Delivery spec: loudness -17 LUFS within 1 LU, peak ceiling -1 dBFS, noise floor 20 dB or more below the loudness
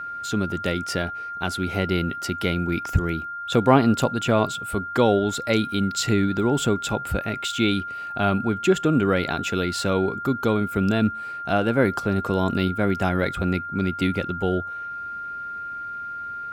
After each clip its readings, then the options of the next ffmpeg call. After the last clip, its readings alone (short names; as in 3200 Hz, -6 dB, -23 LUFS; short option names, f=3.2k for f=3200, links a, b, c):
steady tone 1400 Hz; tone level -30 dBFS; loudness -23.5 LUFS; peak -2.5 dBFS; loudness target -17.0 LUFS
-> -af "bandreject=f=1.4k:w=30"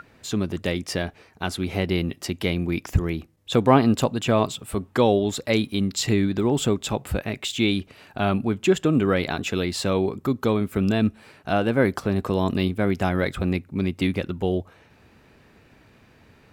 steady tone none; loudness -24.0 LUFS; peak -3.0 dBFS; loudness target -17.0 LUFS
-> -af "volume=7dB,alimiter=limit=-1dB:level=0:latency=1"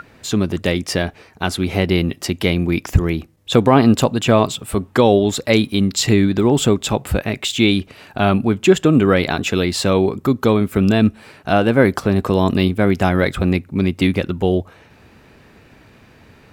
loudness -17.0 LUFS; peak -1.0 dBFS; noise floor -49 dBFS